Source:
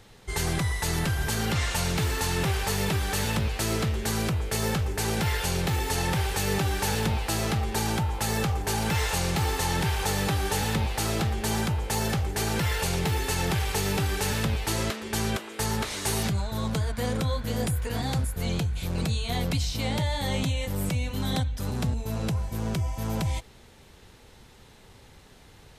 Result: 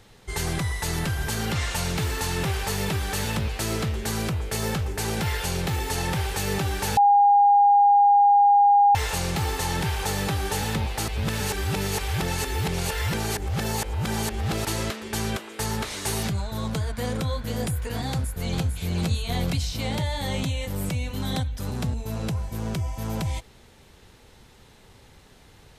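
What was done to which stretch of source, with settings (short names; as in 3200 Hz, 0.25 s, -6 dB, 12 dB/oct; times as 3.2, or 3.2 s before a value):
6.97–8.95 bleep 812 Hz -13 dBFS
11.08–14.65 reverse
18.07–18.72 echo throw 0.45 s, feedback 60%, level -5 dB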